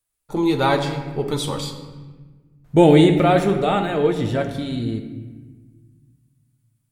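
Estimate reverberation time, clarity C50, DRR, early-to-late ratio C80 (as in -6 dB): 1.4 s, 8.0 dB, 4.0 dB, 9.5 dB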